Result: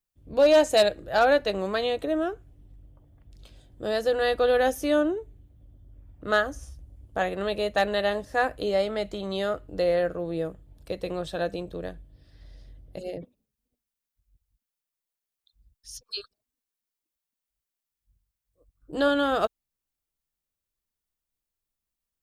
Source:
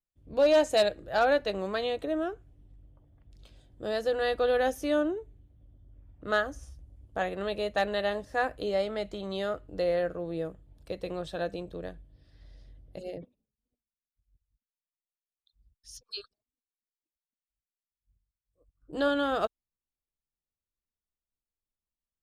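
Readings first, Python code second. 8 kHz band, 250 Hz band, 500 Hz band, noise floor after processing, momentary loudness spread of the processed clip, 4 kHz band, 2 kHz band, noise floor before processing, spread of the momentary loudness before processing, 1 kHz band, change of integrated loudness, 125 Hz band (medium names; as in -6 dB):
no reading, +4.0 dB, +4.0 dB, under -85 dBFS, 16 LU, +4.5 dB, +4.0 dB, under -85 dBFS, 16 LU, +4.0 dB, +4.0 dB, +4.0 dB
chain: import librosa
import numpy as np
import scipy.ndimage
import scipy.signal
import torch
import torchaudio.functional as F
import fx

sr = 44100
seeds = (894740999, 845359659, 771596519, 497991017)

y = fx.high_shelf(x, sr, hz=10000.0, db=6.0)
y = y * librosa.db_to_amplitude(4.0)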